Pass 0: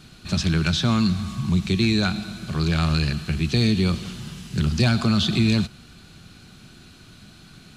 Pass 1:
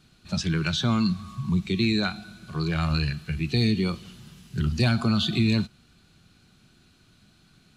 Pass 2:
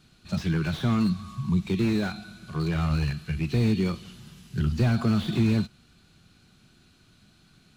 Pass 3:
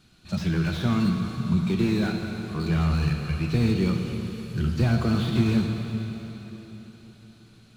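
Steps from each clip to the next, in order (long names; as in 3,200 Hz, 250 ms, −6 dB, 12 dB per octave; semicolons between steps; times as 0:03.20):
noise reduction from a noise print of the clip's start 9 dB; level −2.5 dB
slew-rate limiting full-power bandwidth 44 Hz
dense smooth reverb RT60 4.1 s, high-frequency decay 0.95×, DRR 3 dB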